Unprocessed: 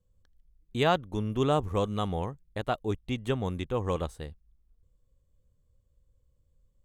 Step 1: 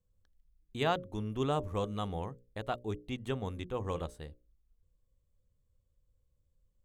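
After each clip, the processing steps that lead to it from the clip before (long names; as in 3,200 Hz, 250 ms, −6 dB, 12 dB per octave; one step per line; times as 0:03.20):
mains-hum notches 60/120/180/240/300/360/420/480/540/600 Hz
level −5.5 dB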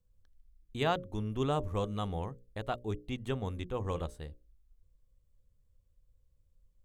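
low-shelf EQ 63 Hz +8 dB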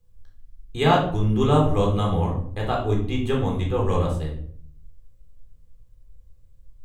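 rectangular room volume 720 cubic metres, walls furnished, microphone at 3.9 metres
level +6 dB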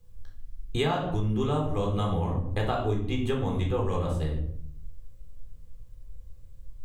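downward compressor 10 to 1, threshold −29 dBFS, peak gain reduction 17 dB
level +5.5 dB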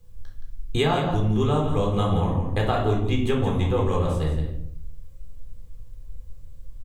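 single-tap delay 171 ms −9 dB
level +4.5 dB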